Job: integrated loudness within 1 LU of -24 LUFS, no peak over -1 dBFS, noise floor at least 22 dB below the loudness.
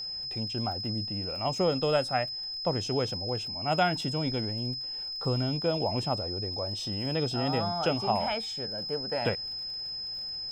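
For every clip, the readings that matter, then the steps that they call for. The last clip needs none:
ticks 28/s; steady tone 5100 Hz; tone level -34 dBFS; loudness -30.0 LUFS; peak -12.5 dBFS; loudness target -24.0 LUFS
-> de-click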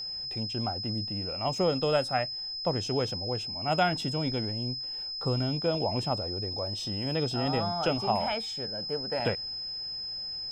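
ticks 0.095/s; steady tone 5100 Hz; tone level -34 dBFS
-> notch 5100 Hz, Q 30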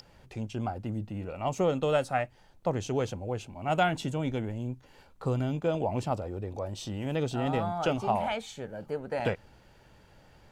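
steady tone none; loudness -32.0 LUFS; peak -13.0 dBFS; loudness target -24.0 LUFS
-> gain +8 dB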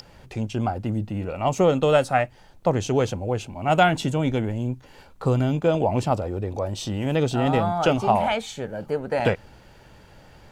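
loudness -24.0 LUFS; peak -5.0 dBFS; noise floor -51 dBFS

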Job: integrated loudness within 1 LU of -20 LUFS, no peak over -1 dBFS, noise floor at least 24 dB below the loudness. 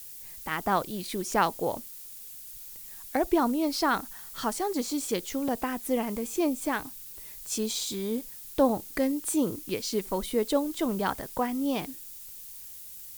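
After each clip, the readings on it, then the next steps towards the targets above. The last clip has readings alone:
dropouts 1; longest dropout 3.1 ms; noise floor -44 dBFS; noise floor target -54 dBFS; loudness -29.5 LUFS; peak -11.0 dBFS; loudness target -20.0 LUFS
-> interpolate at 5.48, 3.1 ms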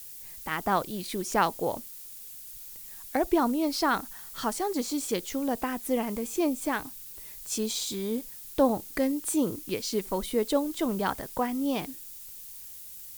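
dropouts 0; noise floor -44 dBFS; noise floor target -54 dBFS
-> denoiser 10 dB, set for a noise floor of -44 dBFS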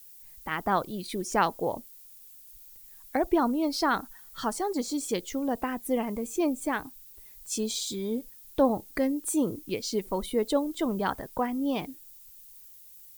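noise floor -51 dBFS; noise floor target -54 dBFS
-> denoiser 6 dB, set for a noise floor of -51 dBFS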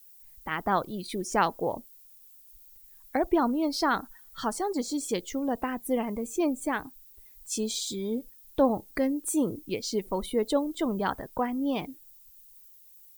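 noise floor -54 dBFS; loudness -29.5 LUFS; peak -11.5 dBFS; loudness target -20.0 LUFS
-> gain +9.5 dB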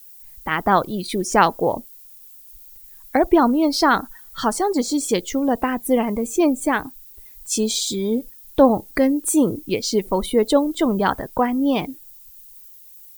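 loudness -20.0 LUFS; peak -2.0 dBFS; noise floor -45 dBFS

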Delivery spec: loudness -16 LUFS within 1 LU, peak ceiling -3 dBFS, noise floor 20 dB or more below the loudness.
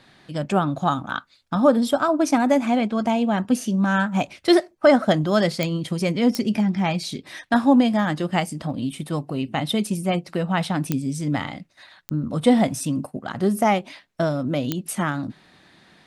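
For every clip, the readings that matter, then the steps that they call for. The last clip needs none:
clicks 5; loudness -22.0 LUFS; peak -5.0 dBFS; loudness target -16.0 LUFS
-> de-click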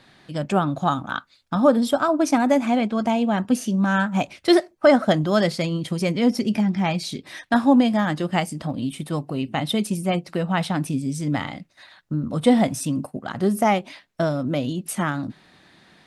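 clicks 0; loudness -22.0 LUFS; peak -5.0 dBFS; loudness target -16.0 LUFS
-> gain +6 dB; limiter -3 dBFS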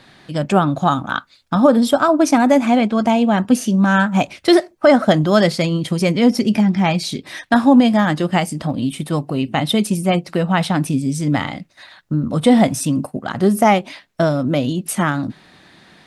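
loudness -16.5 LUFS; peak -3.0 dBFS; noise floor -52 dBFS

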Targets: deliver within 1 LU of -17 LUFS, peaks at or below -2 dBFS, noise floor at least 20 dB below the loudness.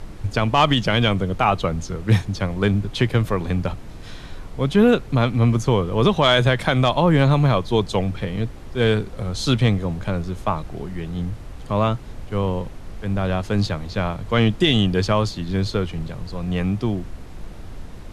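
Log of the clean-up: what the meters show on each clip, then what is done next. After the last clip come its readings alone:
noise floor -37 dBFS; noise floor target -41 dBFS; loudness -21.0 LUFS; peak -2.5 dBFS; loudness target -17.0 LUFS
-> noise print and reduce 6 dB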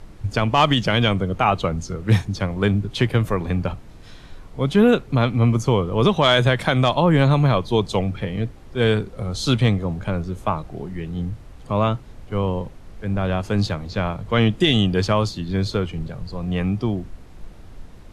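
noise floor -42 dBFS; loudness -21.0 LUFS; peak -2.5 dBFS; loudness target -17.0 LUFS
-> gain +4 dB; limiter -2 dBFS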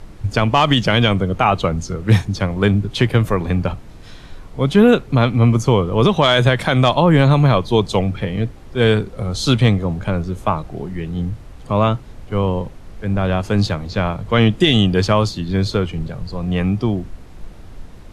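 loudness -17.5 LUFS; peak -2.0 dBFS; noise floor -38 dBFS

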